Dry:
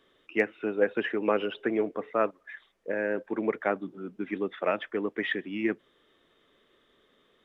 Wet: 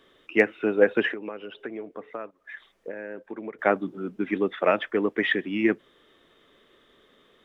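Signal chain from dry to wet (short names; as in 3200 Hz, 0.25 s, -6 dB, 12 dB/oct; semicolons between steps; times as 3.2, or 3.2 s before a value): 1.13–3.59 compressor 6:1, threshold -40 dBFS, peak gain reduction 19 dB; gain +6 dB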